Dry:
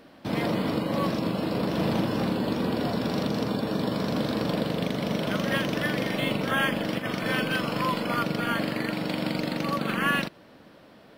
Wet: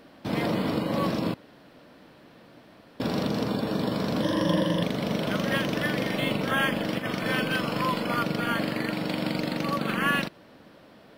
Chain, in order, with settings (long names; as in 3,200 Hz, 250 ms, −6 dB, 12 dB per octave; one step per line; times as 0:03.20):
0:01.34–0:03.00: fill with room tone
0:04.22–0:04.83: EQ curve with evenly spaced ripples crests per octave 1.2, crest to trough 14 dB